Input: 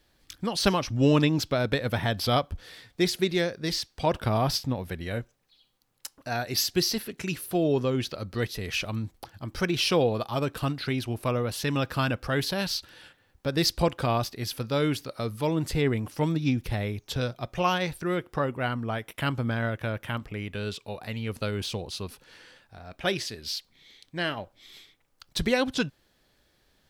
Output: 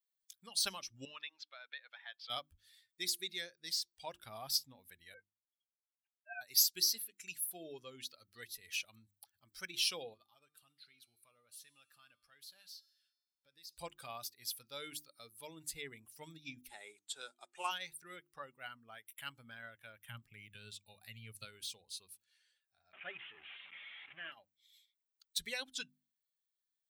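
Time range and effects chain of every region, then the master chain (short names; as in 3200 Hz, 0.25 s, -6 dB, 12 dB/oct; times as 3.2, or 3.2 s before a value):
1.05–2.3 HPF 880 Hz + air absorption 210 m
5.14–6.41 sine-wave speech + doubler 23 ms -10 dB + upward expander, over -45 dBFS
10.14–13.73 bell 2100 Hz +2 dB 2.7 oct + compressor 5:1, threshold -26 dBFS + resonator 150 Hz, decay 1.6 s, mix 70%
16.69–17.71 block floating point 5-bit + speaker cabinet 280–9900 Hz, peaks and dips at 380 Hz +9 dB, 870 Hz +9 dB, 1400 Hz +5 dB, 5700 Hz -4 dB, 8100 Hz +5 dB
20.08–21.45 bell 130 Hz +13 dB 1.2 oct + mismatched tape noise reduction encoder only
22.93–24.32 delta modulation 16 kbps, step -26.5 dBFS + HPF 97 Hz 24 dB/oct
whole clip: per-bin expansion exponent 1.5; pre-emphasis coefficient 0.97; notches 50/100/150/200/250/300/350 Hz; gain +1 dB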